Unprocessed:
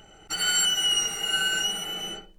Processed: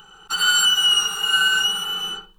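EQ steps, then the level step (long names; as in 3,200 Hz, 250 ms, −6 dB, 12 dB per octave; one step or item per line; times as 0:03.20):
flat-topped bell 1,900 Hz +14 dB 2.3 octaves
high-shelf EQ 9,900 Hz +8 dB
phaser with its sweep stopped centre 420 Hz, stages 8
0.0 dB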